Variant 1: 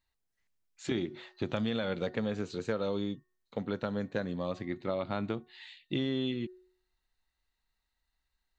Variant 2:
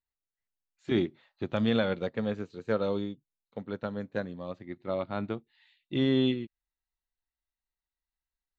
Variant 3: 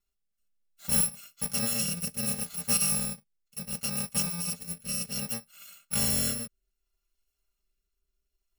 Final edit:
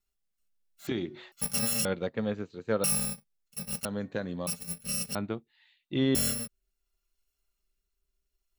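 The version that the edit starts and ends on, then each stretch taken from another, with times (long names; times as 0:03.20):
3
0:00.87–0:01.32: punch in from 1
0:01.85–0:02.84: punch in from 2
0:03.85–0:04.47: punch in from 1
0:05.15–0:06.15: punch in from 2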